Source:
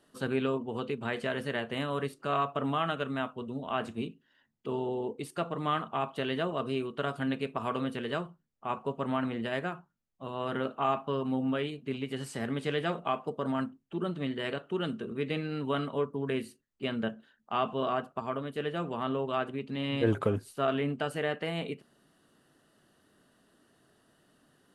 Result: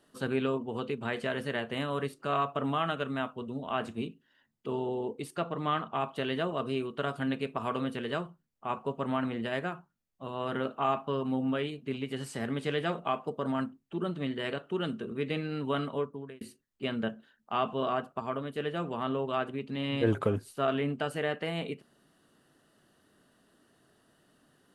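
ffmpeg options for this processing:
-filter_complex "[0:a]asettb=1/sr,asplit=3[s0][s1][s2];[s0]atrim=end=5.364[s3];[s1]atrim=start=5.36:end=5.95,asetpts=PTS-STARTPTS,afade=t=in:d=0.004:c=qsin,afade=t=out:st=0.586:d=0.004:c=qsin,lowpass=6400[s4];[s2]atrim=start=5.946[s5];[s3][s4]acrossfade=d=0.004:c1=hsin:c2=qsin[s6];[s6][s5]acrossfade=d=0.004:c1=qsin:c2=hsin,asplit=2[s7][s8];[s7]atrim=end=16.41,asetpts=PTS-STARTPTS,afade=t=out:st=15.92:d=0.49[s9];[s8]atrim=start=16.41,asetpts=PTS-STARTPTS,afade=t=in:d=0.004:c=hsin[s10];[s9][s10]concat=n=2:v=0:a=1"

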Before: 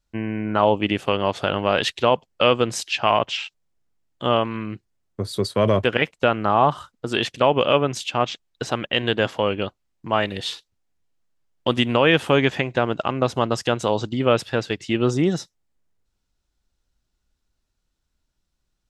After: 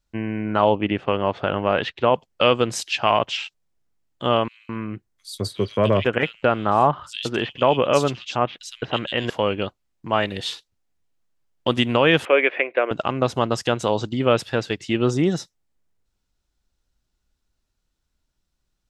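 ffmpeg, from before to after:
-filter_complex "[0:a]asettb=1/sr,asplit=3[s0][s1][s2];[s0]atrim=end=0.754[s3];[s1]atrim=start=0.75:end=2.14,asetpts=PTS-STARTPTS,afade=t=in:d=0.004:c=qsin,afade=t=out:st=1.386:d=0.004:c=qsin,lowpass=2400[s4];[s2]atrim=start=2.136[s5];[s3][s4]acrossfade=d=0.004:c1=hsin:c2=qsin[s6];[s6][s5]acrossfade=d=0.004:c1=qsin:c2=hsin,asettb=1/sr,asplit=3[s7][s8][s9];[s7]atrim=end=4.484[s10];[s8]atrim=start=4.48:end=9.3,asetpts=PTS-STARTPTS,afade=t=in:d=0.004:c=qsin,afade=t=out:st=4.816:d=0.004:c=qsin,acrossover=split=3000[s11][s12];[s11]adelay=210[s13];[s13][s12]amix=inputs=2:normalize=0,atrim=end_sample=212562[s14];[s9]atrim=start=9.296[s15];[s10][s14]acrossfade=d=0.004:c1=hsin:c2=qsin[s16];[s16][s15]acrossfade=d=0.004:c1=qsin:c2=hsin,asettb=1/sr,asplit=3[s17][s18][s19];[s17]atrim=end=12.254[s20];[s18]atrim=start=12.25:end=12.91,asetpts=PTS-STARTPTS,afade=t=in:d=0.004:c=qsin,afade=t=out:st=0.656:d=0.004:c=qsin,highpass=f=360:w=0.5412,highpass=f=360:w=1.3066,equalizer=f=540:t=q:w=4:g=5,equalizer=f=860:t=q:w=4:g=-8,equalizer=f=2300:t=q:w=4:g=9,lowpass=f=2600:w=0.5412,lowpass=f=2600:w=1.3066[s21];[s19]atrim=start=12.906[s22];[s20][s21]acrossfade=d=0.004:c1=hsin:c2=qsin[s23];[s23][s22]acrossfade=d=0.004:c1=qsin:c2=hsin"

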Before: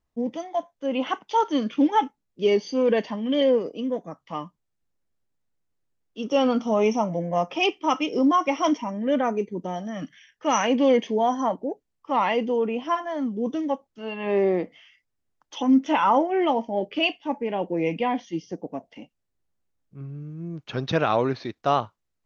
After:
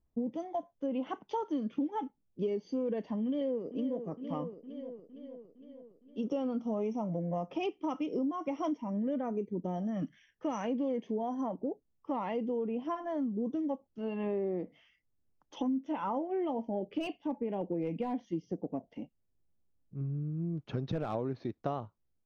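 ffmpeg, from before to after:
-filter_complex "[0:a]asplit=2[s0][s1];[s1]afade=t=in:st=3.25:d=0.01,afade=t=out:st=4.07:d=0.01,aecho=0:1:460|920|1380|1840|2300|2760:0.188365|0.113019|0.0678114|0.0406868|0.0244121|0.0146473[s2];[s0][s2]amix=inputs=2:normalize=0,asettb=1/sr,asplit=3[s3][s4][s5];[s3]atrim=end=16.964[s6];[s4]atrim=start=16.96:end=21.15,asetpts=PTS-STARTPTS,afade=t=in:d=0.004:c=qsin,afade=t=out:st=4.186:d=0.004:c=qsin,volume=7.5,asoftclip=hard,volume=0.133[s7];[s5]atrim=start=21.146[s8];[s6][s7]acrossfade=d=0.004:c1=hsin:c2=qsin[s9];[s9][s8]acrossfade=d=0.004:c1=qsin:c2=hsin,tiltshelf=f=810:g=8.5,acompressor=threshold=0.0562:ratio=6,volume=0.501"

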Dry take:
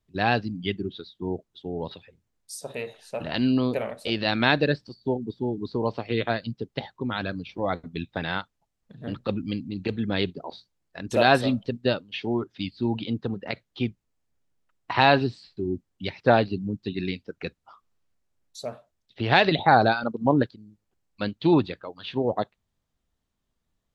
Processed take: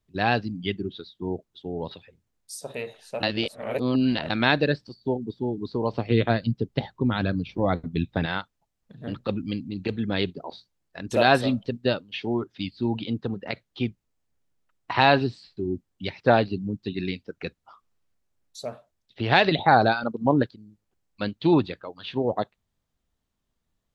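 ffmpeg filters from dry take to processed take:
-filter_complex "[0:a]asettb=1/sr,asplit=3[s0][s1][s2];[s0]atrim=end=5.934[s3];[s1]atrim=start=5.93:end=8.26,asetpts=PTS-STARTPTS,afade=t=in:d=0.004:c=qsin,afade=t=out:st=2.326:d=0.004:c=qsin,lowshelf=f=340:g=9.5[s4];[s2]atrim=start=8.256[s5];[s3][s4]acrossfade=d=0.004:c1=hsin:c2=qsin[s6];[s6][s5]acrossfade=d=0.004:c1=qsin:c2=hsin,asplit=3[s7][s8][s9];[s7]atrim=end=3.232[s10];[s8]atrim=start=3.228:end=4.302,asetpts=PTS-STARTPTS,areverse[s11];[s9]atrim=start=4.298[s12];[s10][s11]acrossfade=d=0.004:c1=hsin:c2=hsin[s13];[s13][s12]acrossfade=d=0.004:c1=hsin:c2=hsin"

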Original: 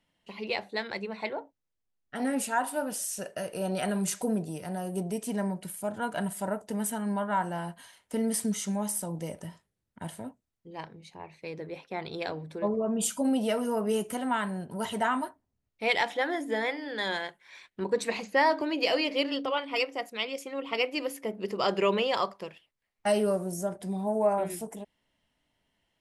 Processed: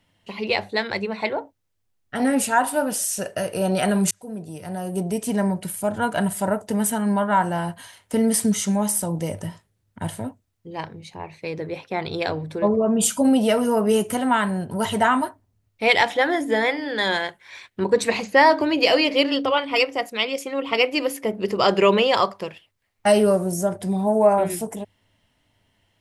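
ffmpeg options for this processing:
-filter_complex "[0:a]asplit=2[s0][s1];[s0]atrim=end=4.11,asetpts=PTS-STARTPTS,afade=t=out:st=4.106:d=0.004:c=hsin[s2];[s1]atrim=start=4.11,asetpts=PTS-STARTPTS,afade=t=in:d=1.65:c=qsin[s3];[s2][s3]concat=n=2:v=0:a=1,equalizer=f=100:w=5:g=15,volume=2.82"

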